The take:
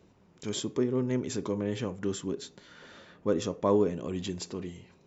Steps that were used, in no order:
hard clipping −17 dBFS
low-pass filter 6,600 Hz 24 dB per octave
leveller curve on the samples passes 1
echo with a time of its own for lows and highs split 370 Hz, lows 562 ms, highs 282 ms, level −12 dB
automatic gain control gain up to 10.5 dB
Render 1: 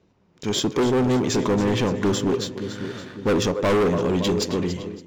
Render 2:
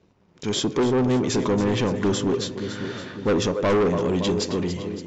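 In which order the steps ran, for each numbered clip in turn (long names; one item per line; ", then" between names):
low-pass filter, then leveller curve on the samples, then echo with a time of its own for lows and highs, then automatic gain control, then hard clipping
automatic gain control, then echo with a time of its own for lows and highs, then hard clipping, then leveller curve on the samples, then low-pass filter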